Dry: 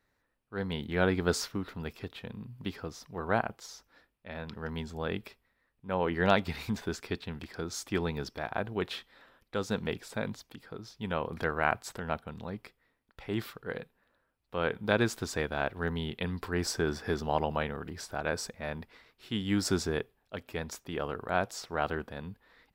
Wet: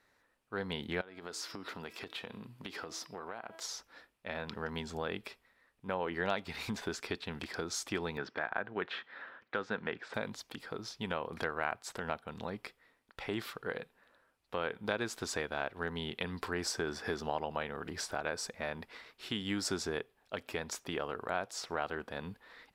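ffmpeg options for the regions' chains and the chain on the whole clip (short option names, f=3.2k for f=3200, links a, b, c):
-filter_complex "[0:a]asettb=1/sr,asplit=3[a][b][c];[a]atrim=end=1.014[d];[b]atrim=start=1.01:end=3.63,asetpts=PTS-STARTPTS,afade=t=in:d=0.004:c=qsin,afade=t=out:st=2.616:d=0.004:c=qsin,highpass=f=220:p=1,bandreject=f=325.9:t=h:w=4,bandreject=f=651.8:t=h:w=4,bandreject=f=977.7:t=h:w=4,bandreject=f=1.3036k:t=h:w=4,bandreject=f=1.6295k:t=h:w=4,bandreject=f=1.9554k:t=h:w=4,bandreject=f=2.2813k:t=h:w=4,bandreject=f=2.6072k:t=h:w=4,bandreject=f=2.9331k:t=h:w=4,bandreject=f=3.259k:t=h:w=4,bandreject=f=3.5849k:t=h:w=4,bandreject=f=3.9108k:t=h:w=4,bandreject=f=4.2367k:t=h:w=4,bandreject=f=4.5626k:t=h:w=4,bandreject=f=4.8885k:t=h:w=4,bandreject=f=5.2144k:t=h:w=4,bandreject=f=5.5403k:t=h:w=4,acompressor=threshold=-42dB:ratio=16:attack=3.2:release=140:knee=1:detection=peak[e];[c]atrim=start=3.626[f];[d][e]acrossfade=d=0.004:c1=hsin:c2=qsin[g];[g][f]acrossfade=d=0.004:c1=qsin:c2=hsin,asettb=1/sr,asplit=3[h][i][j];[h]atrim=end=8.174[k];[i]atrim=start=8.17:end=10.14,asetpts=PTS-STARTPTS,afade=t=in:d=0.004:c=qsin,afade=t=out:st=1.966:d=0.004:c=qsin,highpass=120,lowpass=2.8k,equalizer=f=1.6k:t=o:w=0.7:g=7.5[l];[j]atrim=start=10.136[m];[k][l]acrossfade=d=0.004:c1=hsin:c2=qsin[n];[n][m]acrossfade=d=0.004:c1=qsin:c2=hsin,lowshelf=f=220:g=-11,acompressor=threshold=-43dB:ratio=2.5,lowpass=12k,volume=6.5dB"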